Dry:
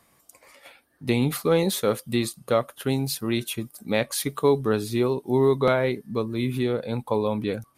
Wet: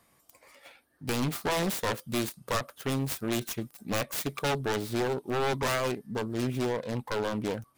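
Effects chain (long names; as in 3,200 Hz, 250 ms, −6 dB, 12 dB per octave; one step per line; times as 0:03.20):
phase distortion by the signal itself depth 0.93 ms
wave folding −18 dBFS
level −3.5 dB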